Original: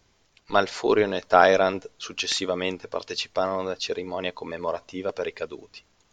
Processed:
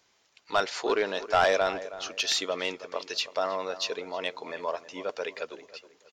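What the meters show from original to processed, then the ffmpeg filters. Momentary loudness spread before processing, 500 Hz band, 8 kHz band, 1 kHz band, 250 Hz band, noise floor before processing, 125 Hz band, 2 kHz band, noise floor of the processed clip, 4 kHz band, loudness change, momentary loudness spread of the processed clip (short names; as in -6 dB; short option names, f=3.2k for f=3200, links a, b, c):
15 LU, -5.5 dB, -0.5 dB, -5.0 dB, -9.0 dB, -65 dBFS, -11.0 dB, -3.0 dB, -68 dBFS, -0.5 dB, -4.5 dB, 13 LU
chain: -filter_complex "[0:a]highpass=f=680:p=1,asoftclip=type=tanh:threshold=-14.5dB,asplit=2[a][b];[b]adelay=320,lowpass=f=2k:p=1,volume=-14dB,asplit=2[c][d];[d]adelay=320,lowpass=f=2k:p=1,volume=0.34,asplit=2[e][f];[f]adelay=320,lowpass=f=2k:p=1,volume=0.34[g];[a][c][e][g]amix=inputs=4:normalize=0"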